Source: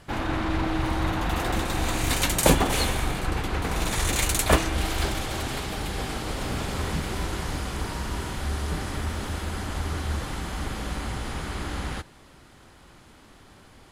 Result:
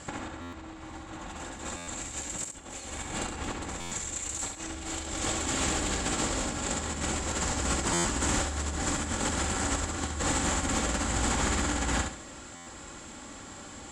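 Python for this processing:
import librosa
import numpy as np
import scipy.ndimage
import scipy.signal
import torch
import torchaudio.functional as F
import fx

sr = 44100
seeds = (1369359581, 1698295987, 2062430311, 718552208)

y = fx.highpass(x, sr, hz=81.0, slope=6)
y = fx.high_shelf(y, sr, hz=3900.0, db=-5.0)
y = y + 0.38 * np.pad(y, (int(3.6 * sr / 1000.0), 0))[:len(y)]
y = fx.over_compress(y, sr, threshold_db=-34.0, ratio=-0.5)
y = fx.lowpass_res(y, sr, hz=7500.0, q=11.0)
y = fx.echo_feedback(y, sr, ms=68, feedback_pct=33, wet_db=-5.5)
y = fx.buffer_glitch(y, sr, at_s=(0.41, 1.76, 3.8, 7.93, 12.55), block=512, repeats=9)
y = fx.doppler_dist(y, sr, depth_ms=0.2)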